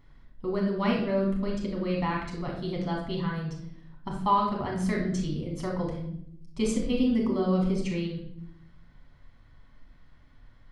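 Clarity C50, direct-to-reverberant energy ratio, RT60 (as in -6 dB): 3.5 dB, -2.0 dB, 0.75 s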